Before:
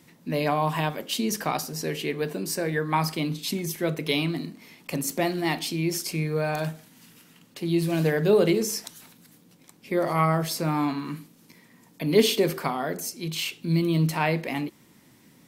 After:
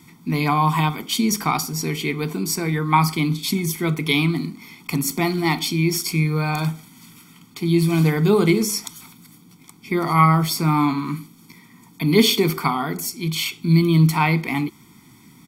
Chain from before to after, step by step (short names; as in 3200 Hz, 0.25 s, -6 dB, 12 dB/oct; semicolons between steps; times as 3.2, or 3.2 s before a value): comb 0.9 ms, depth 98%; gain +3.5 dB